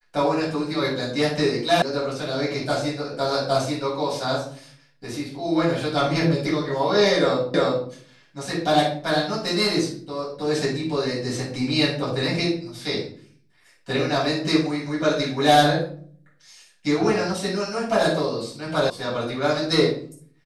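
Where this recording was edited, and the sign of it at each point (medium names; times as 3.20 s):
1.82 s: sound stops dead
7.54 s: repeat of the last 0.35 s
18.90 s: sound stops dead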